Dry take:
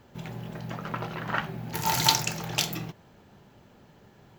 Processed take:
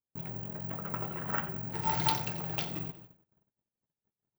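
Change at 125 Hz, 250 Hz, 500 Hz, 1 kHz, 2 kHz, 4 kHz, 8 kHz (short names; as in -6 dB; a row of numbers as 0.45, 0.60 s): -4.0, -4.0, -4.5, -5.5, -8.0, -13.0, -18.5 dB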